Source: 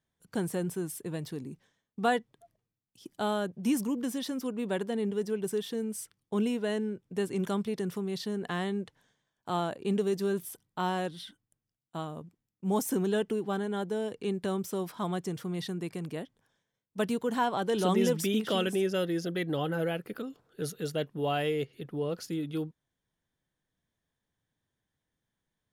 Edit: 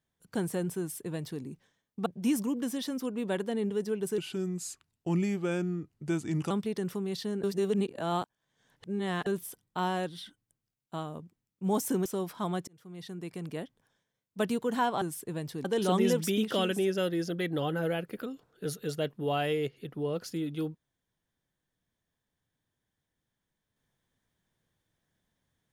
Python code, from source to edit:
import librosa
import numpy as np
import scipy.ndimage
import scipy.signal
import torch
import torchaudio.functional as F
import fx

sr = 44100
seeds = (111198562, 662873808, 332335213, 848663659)

y = fx.edit(x, sr, fx.duplicate(start_s=0.79, length_s=0.63, to_s=17.61),
    fx.cut(start_s=2.06, length_s=1.41),
    fx.speed_span(start_s=5.59, length_s=1.93, speed=0.83),
    fx.reverse_span(start_s=8.45, length_s=1.83),
    fx.cut(start_s=13.07, length_s=1.58),
    fx.fade_in_span(start_s=15.27, length_s=0.9), tone=tone)